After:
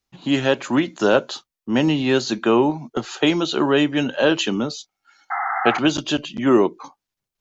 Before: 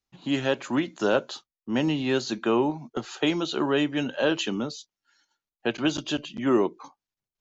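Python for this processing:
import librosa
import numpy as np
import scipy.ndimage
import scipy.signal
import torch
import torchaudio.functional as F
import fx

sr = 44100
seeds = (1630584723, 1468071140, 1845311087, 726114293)

y = fx.spec_paint(x, sr, seeds[0], shape='noise', start_s=5.3, length_s=0.49, low_hz=670.0, high_hz=2100.0, level_db=-37.0)
y = fx.small_body(y, sr, hz=(780.0, 1300.0, 2200.0), ring_ms=30, db=15, at=(4.7, 5.79))
y = y * librosa.db_to_amplitude(6.5)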